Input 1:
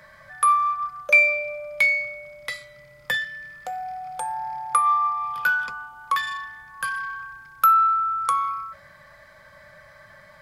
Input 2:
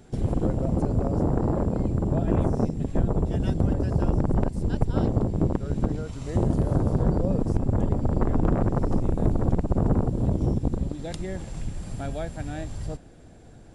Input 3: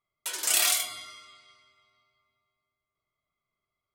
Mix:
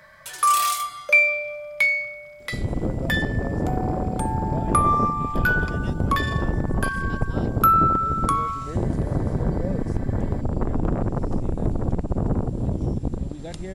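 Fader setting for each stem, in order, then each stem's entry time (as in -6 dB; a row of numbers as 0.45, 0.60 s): -0.5, -1.0, -3.5 dB; 0.00, 2.40, 0.00 s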